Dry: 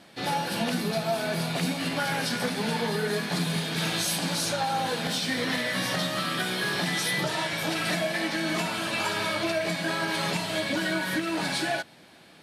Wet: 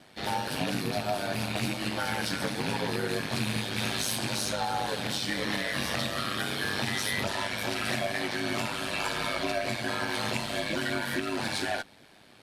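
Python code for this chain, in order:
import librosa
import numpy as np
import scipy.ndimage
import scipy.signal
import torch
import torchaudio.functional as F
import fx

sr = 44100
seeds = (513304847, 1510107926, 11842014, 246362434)

y = fx.rattle_buzz(x, sr, strikes_db=-30.0, level_db=-23.0)
y = y * np.sin(2.0 * np.pi * 50.0 * np.arange(len(y)) / sr)
y = fx.cheby_harmonics(y, sr, harmonics=(8,), levels_db=(-33,), full_scale_db=-15.0)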